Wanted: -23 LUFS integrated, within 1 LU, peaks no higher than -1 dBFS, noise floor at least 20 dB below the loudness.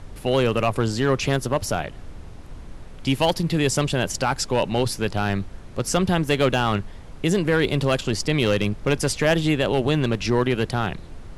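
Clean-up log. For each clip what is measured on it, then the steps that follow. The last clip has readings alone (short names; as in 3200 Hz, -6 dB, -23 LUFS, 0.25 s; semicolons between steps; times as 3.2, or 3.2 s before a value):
clipped 0.5%; flat tops at -11.5 dBFS; noise floor -39 dBFS; noise floor target -43 dBFS; loudness -22.5 LUFS; peak -11.5 dBFS; loudness target -23.0 LUFS
-> clip repair -11.5 dBFS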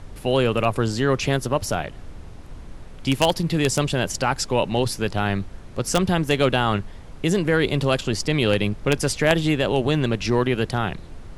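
clipped 0.0%; noise floor -39 dBFS; noise floor target -42 dBFS
-> noise print and reduce 6 dB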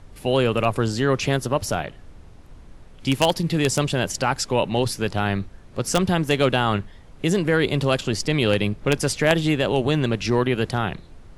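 noise floor -45 dBFS; loudness -22.0 LUFS; peak -2.5 dBFS; loudness target -23.0 LUFS
-> gain -1 dB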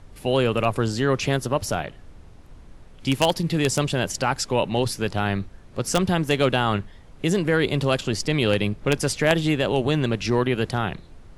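loudness -23.0 LUFS; peak -3.5 dBFS; noise floor -46 dBFS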